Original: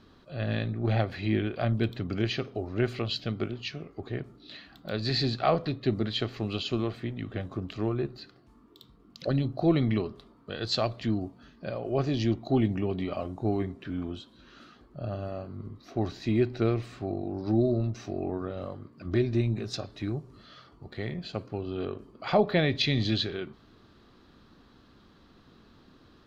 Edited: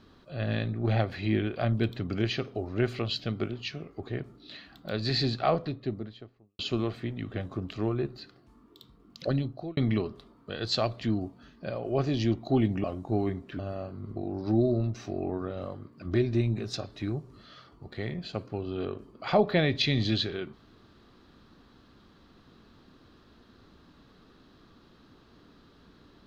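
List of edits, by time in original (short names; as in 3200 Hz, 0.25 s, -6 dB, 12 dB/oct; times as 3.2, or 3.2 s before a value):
5.24–6.59 studio fade out
9.3–9.77 fade out
12.84–13.17 cut
13.92–15.15 cut
15.72–17.16 cut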